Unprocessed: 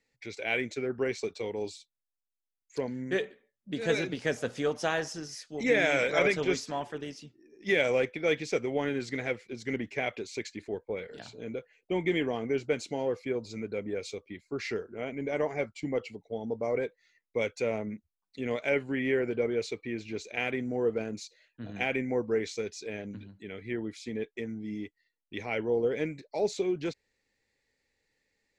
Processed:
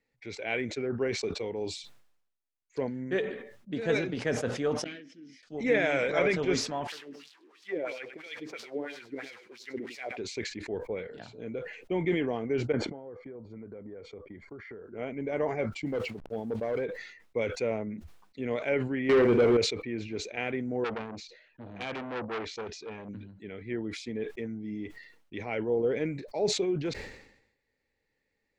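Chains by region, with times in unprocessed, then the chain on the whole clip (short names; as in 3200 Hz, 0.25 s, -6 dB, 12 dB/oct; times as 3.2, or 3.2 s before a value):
4.84–5.43 hard clip -27.5 dBFS + vowel filter i
6.87–10.17 switching spikes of -28 dBFS + LFO band-pass sine 3 Hz 310–4800 Hz + echo 0.101 s -16 dB
12.72–14.84 polynomial smoothing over 41 samples + compressor 12:1, threshold -40 dBFS
15.86–16.82 level-crossing sampler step -53.5 dBFS + hard clip -26 dBFS
19.09–19.57 doubler 50 ms -8.5 dB + sample leveller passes 3
20.84–23.09 LPF 5100 Hz + core saturation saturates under 3400 Hz
whole clip: LPF 2100 Hz 6 dB/oct; sustainer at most 72 dB/s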